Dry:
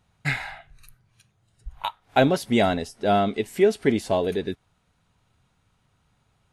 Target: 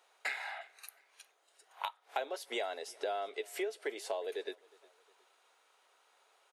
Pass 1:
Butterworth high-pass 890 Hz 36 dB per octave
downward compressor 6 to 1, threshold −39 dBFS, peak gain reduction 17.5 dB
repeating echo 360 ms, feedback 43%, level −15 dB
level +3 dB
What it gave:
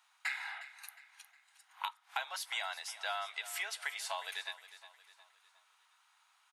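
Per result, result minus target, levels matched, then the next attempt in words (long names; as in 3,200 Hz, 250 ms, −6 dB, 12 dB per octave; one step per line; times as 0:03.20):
500 Hz band −13.0 dB; echo-to-direct +10.5 dB
Butterworth high-pass 410 Hz 36 dB per octave
downward compressor 6 to 1, threshold −39 dBFS, peak gain reduction 22.5 dB
repeating echo 360 ms, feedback 43%, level −15 dB
level +3 dB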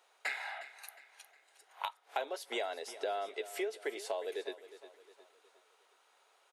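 echo-to-direct +10.5 dB
Butterworth high-pass 410 Hz 36 dB per octave
downward compressor 6 to 1, threshold −39 dBFS, peak gain reduction 22.5 dB
repeating echo 360 ms, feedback 43%, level −25.5 dB
level +3 dB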